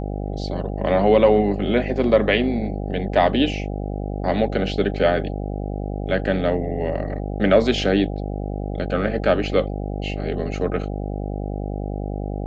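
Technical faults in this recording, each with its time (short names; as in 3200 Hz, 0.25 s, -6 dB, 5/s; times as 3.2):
buzz 50 Hz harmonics 16 -27 dBFS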